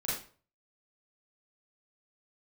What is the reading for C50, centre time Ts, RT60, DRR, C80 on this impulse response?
1.5 dB, 52 ms, 0.40 s, -8.5 dB, 7.5 dB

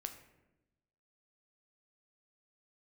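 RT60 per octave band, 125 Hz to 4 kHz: 1.3, 1.3, 1.1, 0.85, 0.85, 0.55 s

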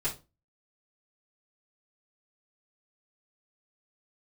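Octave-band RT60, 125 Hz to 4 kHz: 0.35, 0.35, 0.30, 0.25, 0.20, 0.20 s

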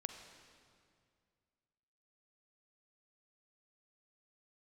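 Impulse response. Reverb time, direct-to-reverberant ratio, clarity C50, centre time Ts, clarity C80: 2.2 s, 6.0 dB, 6.5 dB, 36 ms, 7.5 dB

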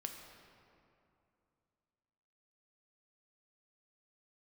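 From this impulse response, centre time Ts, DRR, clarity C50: 59 ms, 3.0 dB, 4.5 dB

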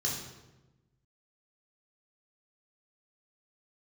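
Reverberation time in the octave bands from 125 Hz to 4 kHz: 1.7, 1.4, 1.2, 1.0, 0.85, 0.75 s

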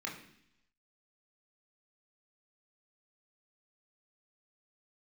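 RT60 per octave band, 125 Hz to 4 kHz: 0.90, 0.85, 0.70, 0.70, 0.85, 0.95 s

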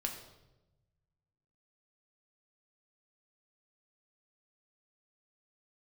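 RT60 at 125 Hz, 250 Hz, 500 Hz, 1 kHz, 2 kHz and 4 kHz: 2.0, 1.3, 1.1, 0.90, 0.75, 0.75 s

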